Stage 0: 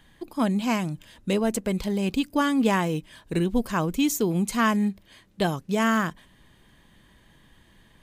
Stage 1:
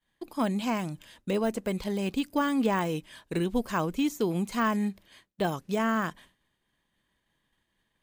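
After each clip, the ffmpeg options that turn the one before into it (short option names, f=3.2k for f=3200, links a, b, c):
-af "lowshelf=f=290:g=-7.5,agate=range=-33dB:threshold=-48dB:ratio=3:detection=peak,deesser=0.95"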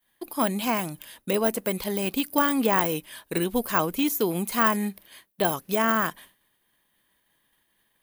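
-af "lowshelf=f=220:g=-10,aexciter=amount=6.2:drive=2.3:freq=9.8k,volume=5.5dB"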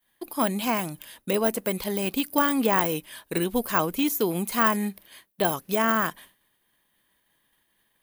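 -af anull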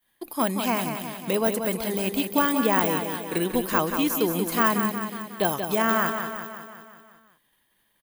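-af "aecho=1:1:182|364|546|728|910|1092|1274:0.447|0.259|0.15|0.0872|0.0505|0.0293|0.017"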